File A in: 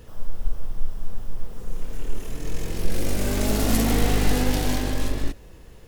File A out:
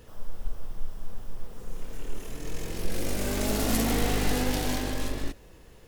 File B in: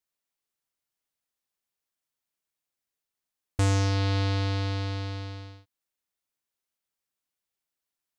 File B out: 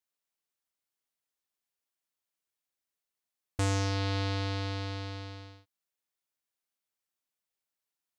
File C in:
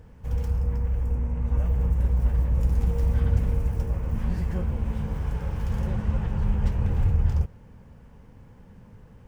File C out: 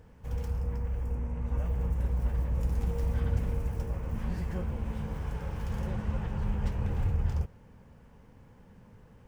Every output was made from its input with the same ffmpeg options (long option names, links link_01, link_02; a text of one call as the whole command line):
ffmpeg -i in.wav -af "lowshelf=frequency=190:gain=-5,volume=-2.5dB" out.wav